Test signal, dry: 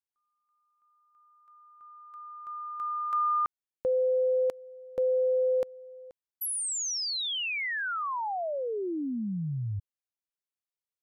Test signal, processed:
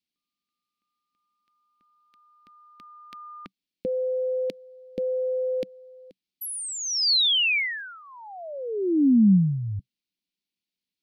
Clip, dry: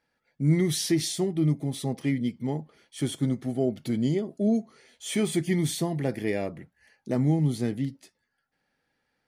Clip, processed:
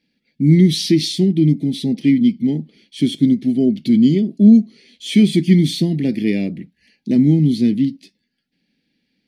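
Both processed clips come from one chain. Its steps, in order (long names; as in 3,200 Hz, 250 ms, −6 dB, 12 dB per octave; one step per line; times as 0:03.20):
drawn EQ curve 130 Hz 0 dB, 190 Hz +14 dB, 280 Hz +11 dB, 490 Hz −3 dB, 1,200 Hz −19 dB, 2,300 Hz +6 dB, 4,400 Hz +9 dB, 7,000 Hz −4 dB
level +3 dB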